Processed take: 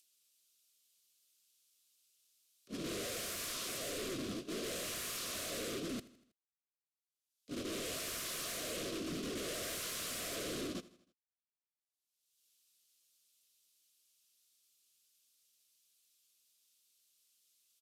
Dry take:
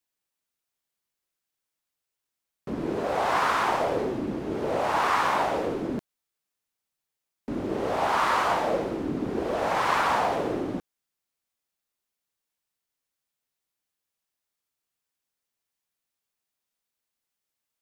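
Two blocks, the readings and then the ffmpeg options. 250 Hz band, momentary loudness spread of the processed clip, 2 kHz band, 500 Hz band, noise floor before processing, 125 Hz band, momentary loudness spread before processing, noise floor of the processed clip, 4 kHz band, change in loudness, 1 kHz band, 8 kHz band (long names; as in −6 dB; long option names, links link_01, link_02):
−12.5 dB, 4 LU, −15.0 dB, −16.0 dB, below −85 dBFS, −12.5 dB, 10 LU, below −85 dBFS, −3.5 dB, −13.5 dB, −26.5 dB, +4.0 dB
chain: -filter_complex "[0:a]acrossover=split=280|600|4000[link_01][link_02][link_03][link_04];[link_03]acompressor=threshold=-34dB:ratio=6[link_05];[link_01][link_02][link_05][link_04]amix=inputs=4:normalize=0,highpass=frequency=110:poles=1,highshelf=frequency=6200:gain=-7,agate=range=-58dB:threshold=-30dB:ratio=16:detection=peak,acompressor=mode=upward:threshold=-46dB:ratio=2.5,volume=34dB,asoftclip=hard,volume=-34dB,aexciter=amount=4.3:drive=8.8:freq=2700,flanger=delay=2.5:depth=7.9:regen=-42:speed=1.5:shape=triangular,aeval=exprs='0.0133*(abs(mod(val(0)/0.0133+3,4)-2)-1)':channel_layout=same,asuperstop=centerf=860:order=4:qfactor=2.3,aecho=1:1:80|160|240|320:0.112|0.0595|0.0315|0.0167,aresample=32000,aresample=44100,volume=1.5dB"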